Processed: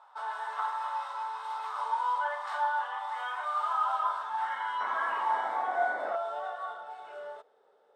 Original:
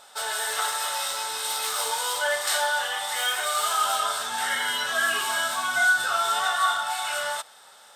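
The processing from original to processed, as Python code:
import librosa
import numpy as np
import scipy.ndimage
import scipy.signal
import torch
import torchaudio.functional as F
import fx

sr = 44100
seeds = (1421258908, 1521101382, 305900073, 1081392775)

y = fx.spec_paint(x, sr, seeds[0], shape='noise', start_s=4.8, length_s=1.36, low_hz=200.0, high_hz=2300.0, level_db=-30.0)
y = fx.high_shelf(y, sr, hz=6800.0, db=-8.0)
y = fx.filter_sweep_bandpass(y, sr, from_hz=1000.0, to_hz=430.0, start_s=5.05, end_s=7.04, q=5.6)
y = F.gain(torch.from_numpy(y), 4.5).numpy()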